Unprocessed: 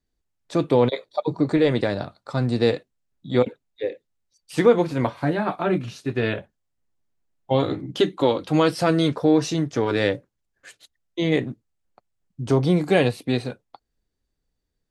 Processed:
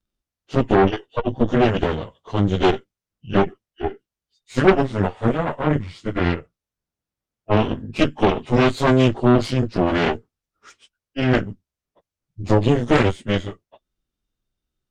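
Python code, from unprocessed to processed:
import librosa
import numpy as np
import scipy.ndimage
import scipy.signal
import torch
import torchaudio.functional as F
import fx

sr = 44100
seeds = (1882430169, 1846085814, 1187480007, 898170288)

y = fx.pitch_bins(x, sr, semitones=-4.0)
y = fx.cheby_harmonics(y, sr, harmonics=(8,), levels_db=(-12,), full_scale_db=-4.0)
y = y * librosa.db_to_amplitude(1.5)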